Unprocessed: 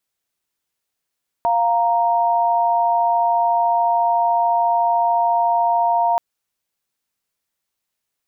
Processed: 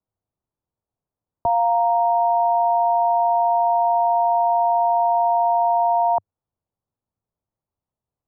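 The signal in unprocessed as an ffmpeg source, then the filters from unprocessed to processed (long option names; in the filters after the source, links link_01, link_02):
-f lavfi -i "aevalsrc='0.141*(sin(2*PI*698.46*t)+sin(2*PI*932.33*t))':duration=4.73:sample_rate=44100"
-filter_complex "[0:a]lowpass=frequency=1000:width=0.5412,lowpass=frequency=1000:width=1.3066,equalizer=frequency=100:width_type=o:width=0.71:gain=7,acrossover=split=170|410[link_01][link_02][link_03];[link_01]acontrast=52[link_04];[link_04][link_02][link_03]amix=inputs=3:normalize=0"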